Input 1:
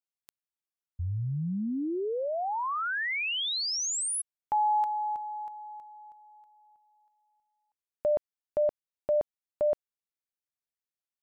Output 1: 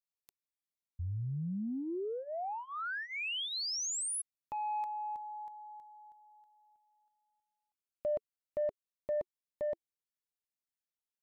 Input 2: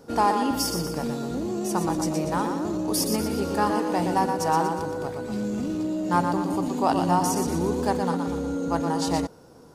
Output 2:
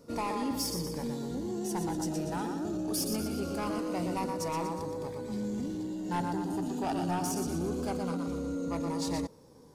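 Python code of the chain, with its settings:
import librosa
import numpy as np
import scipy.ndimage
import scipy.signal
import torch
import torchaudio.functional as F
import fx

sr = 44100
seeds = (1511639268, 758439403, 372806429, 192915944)

y = 10.0 ** (-19.0 / 20.0) * np.tanh(x / 10.0 ** (-19.0 / 20.0))
y = fx.notch_cascade(y, sr, direction='falling', hz=0.23)
y = y * librosa.db_to_amplitude(-5.0)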